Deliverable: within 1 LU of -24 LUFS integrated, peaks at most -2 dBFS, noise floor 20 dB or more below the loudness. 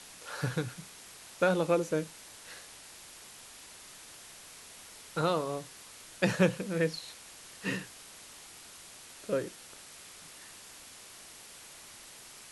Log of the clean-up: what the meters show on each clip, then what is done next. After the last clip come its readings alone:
noise floor -51 dBFS; noise floor target -53 dBFS; loudness -32.5 LUFS; peak level -13.0 dBFS; loudness target -24.0 LUFS
-> noise print and reduce 6 dB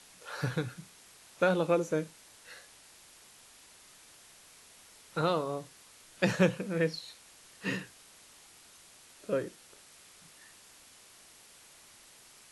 noise floor -57 dBFS; loudness -32.5 LUFS; peak level -13.0 dBFS; loudness target -24.0 LUFS
-> trim +8.5 dB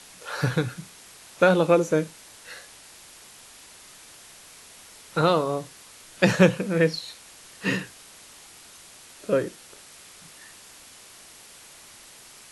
loudness -24.0 LUFS; peak level -4.5 dBFS; noise floor -49 dBFS

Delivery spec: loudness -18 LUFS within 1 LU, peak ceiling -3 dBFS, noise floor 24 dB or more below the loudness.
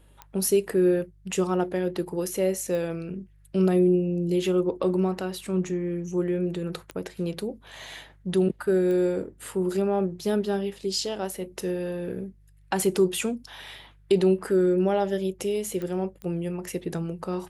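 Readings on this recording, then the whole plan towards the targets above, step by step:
clicks found 6; hum 50 Hz; highest harmonic 150 Hz; hum level -53 dBFS; loudness -26.5 LUFS; peak level -10.0 dBFS; loudness target -18.0 LUFS
-> de-click; de-hum 50 Hz, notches 3; trim +8.5 dB; peak limiter -3 dBFS

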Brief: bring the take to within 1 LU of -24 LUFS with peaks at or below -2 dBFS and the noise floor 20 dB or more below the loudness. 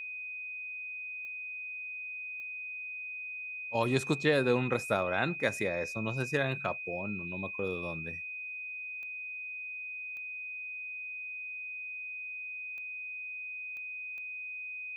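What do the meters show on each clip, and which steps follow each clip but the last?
clicks found 7; steady tone 2.5 kHz; tone level -38 dBFS; loudness -35.0 LUFS; peak level -13.0 dBFS; loudness target -24.0 LUFS
-> de-click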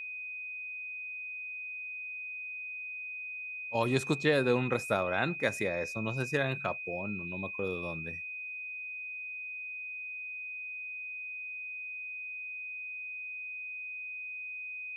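clicks found 0; steady tone 2.5 kHz; tone level -38 dBFS
-> band-stop 2.5 kHz, Q 30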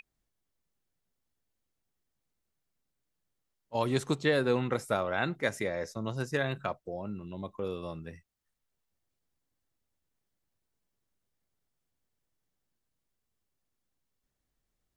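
steady tone not found; loudness -32.5 LUFS; peak level -13.5 dBFS; loudness target -24.0 LUFS
-> trim +8.5 dB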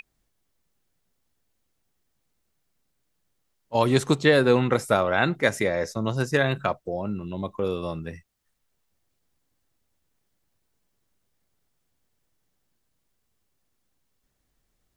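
loudness -24.0 LUFS; peak level -5.0 dBFS; noise floor -75 dBFS

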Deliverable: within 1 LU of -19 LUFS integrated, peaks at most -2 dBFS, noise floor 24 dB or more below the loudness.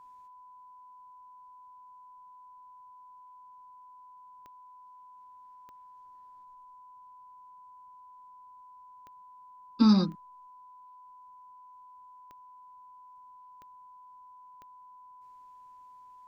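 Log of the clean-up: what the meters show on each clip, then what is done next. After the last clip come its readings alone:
clicks found 7; steady tone 1 kHz; tone level -50 dBFS; loudness -24.5 LUFS; peak level -11.5 dBFS; loudness target -19.0 LUFS
-> de-click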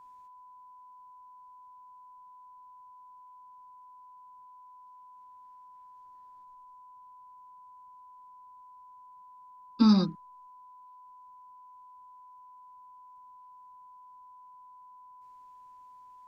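clicks found 0; steady tone 1 kHz; tone level -50 dBFS
-> band-stop 1 kHz, Q 30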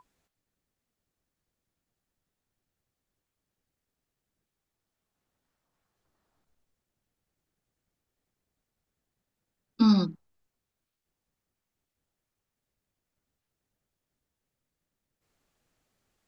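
steady tone not found; loudness -24.5 LUFS; peak level -11.5 dBFS; loudness target -19.0 LUFS
-> trim +5.5 dB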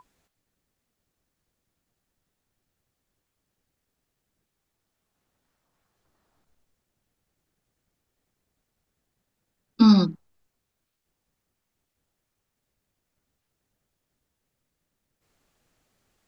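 loudness -19.0 LUFS; peak level -6.0 dBFS; noise floor -81 dBFS

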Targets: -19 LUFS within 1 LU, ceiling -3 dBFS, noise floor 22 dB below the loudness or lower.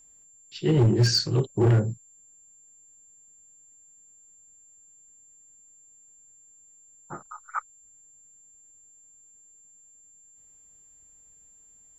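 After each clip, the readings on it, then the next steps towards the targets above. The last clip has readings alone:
clipped samples 0.6%; clipping level -15.0 dBFS; steady tone 7.3 kHz; tone level -53 dBFS; loudness -23.5 LUFS; peak level -15.0 dBFS; loudness target -19.0 LUFS
-> clip repair -15 dBFS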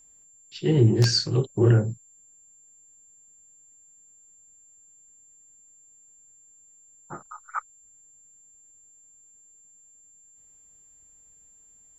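clipped samples 0.0%; steady tone 7.3 kHz; tone level -53 dBFS
-> band-stop 7.3 kHz, Q 30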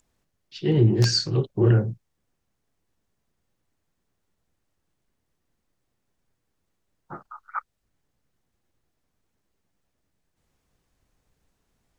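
steady tone not found; loudness -21.5 LUFS; peak level -6.0 dBFS; loudness target -19.0 LUFS
-> trim +2.5 dB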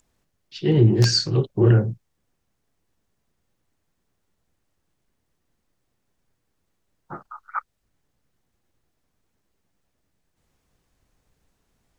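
loudness -19.0 LUFS; peak level -3.5 dBFS; noise floor -74 dBFS

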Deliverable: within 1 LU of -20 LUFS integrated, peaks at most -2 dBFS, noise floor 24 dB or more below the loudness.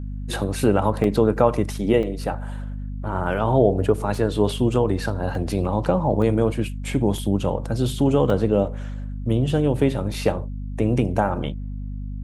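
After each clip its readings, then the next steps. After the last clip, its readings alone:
dropouts 8; longest dropout 2.0 ms; hum 50 Hz; highest harmonic 250 Hz; hum level -28 dBFS; loudness -22.0 LUFS; peak level -3.5 dBFS; loudness target -20.0 LUFS
-> interpolate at 1.04/2.03/4.15/5.35/6.22/7.18/8.30/10.14 s, 2 ms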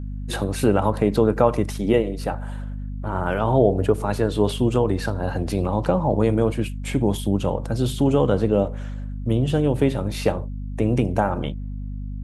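dropouts 0; hum 50 Hz; highest harmonic 250 Hz; hum level -28 dBFS
-> de-hum 50 Hz, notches 5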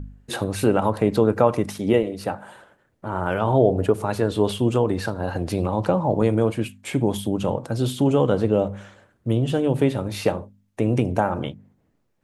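hum not found; loudness -22.5 LUFS; peak level -3.5 dBFS; loudness target -20.0 LUFS
-> trim +2.5 dB; peak limiter -2 dBFS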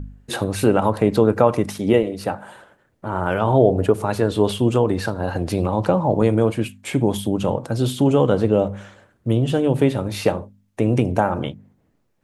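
loudness -20.0 LUFS; peak level -2.0 dBFS; noise floor -64 dBFS

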